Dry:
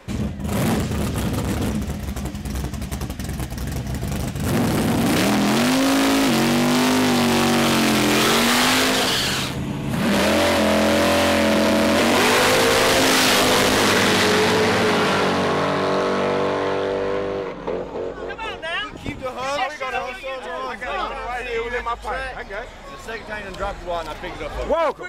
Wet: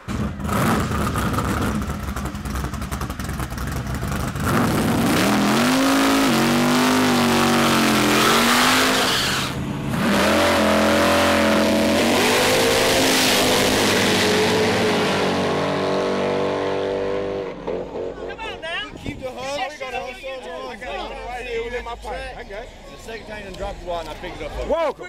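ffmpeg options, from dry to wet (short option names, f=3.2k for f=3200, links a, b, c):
-af "asetnsamples=n=441:p=0,asendcmd='4.65 equalizer g 5;11.63 equalizer g -6;19.08 equalizer g -14.5;23.88 equalizer g -7.5',equalizer=f=1.3k:t=o:w=0.6:g=13"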